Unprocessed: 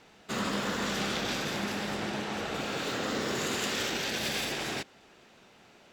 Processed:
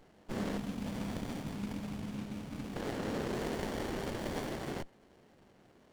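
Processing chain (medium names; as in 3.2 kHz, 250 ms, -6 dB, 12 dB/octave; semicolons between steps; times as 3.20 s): spectral selection erased 0.57–2.76 s, 310–2200 Hz; sliding maximum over 33 samples; trim -2 dB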